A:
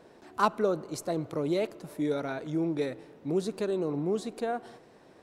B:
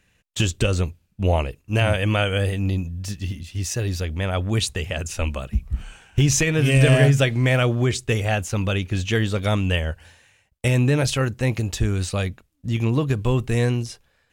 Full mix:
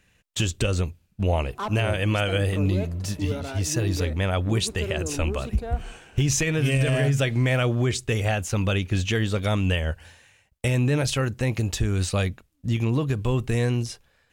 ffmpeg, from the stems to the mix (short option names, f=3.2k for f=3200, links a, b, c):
-filter_complex "[0:a]asoftclip=type=tanh:threshold=-23.5dB,adelay=1200,volume=-0.5dB[a];[1:a]volume=0.5dB[b];[a][b]amix=inputs=2:normalize=0,alimiter=limit=-13.5dB:level=0:latency=1:release=171"